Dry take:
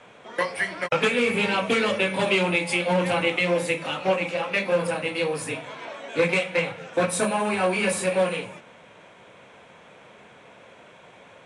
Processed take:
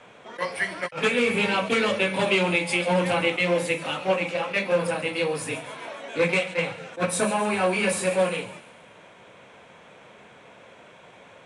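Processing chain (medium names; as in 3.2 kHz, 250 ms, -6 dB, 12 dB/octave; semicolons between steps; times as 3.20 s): feedback echo behind a high-pass 138 ms, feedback 52%, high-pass 3.7 kHz, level -12 dB; attacks held to a fixed rise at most 280 dB/s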